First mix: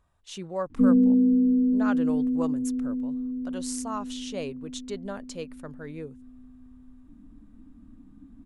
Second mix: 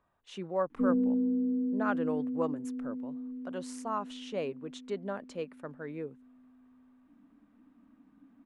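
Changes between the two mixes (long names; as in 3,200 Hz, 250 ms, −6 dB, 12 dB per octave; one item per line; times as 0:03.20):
background: add spectral tilt +4 dB per octave
master: add three-way crossover with the lows and the highs turned down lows −15 dB, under 160 Hz, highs −14 dB, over 2,800 Hz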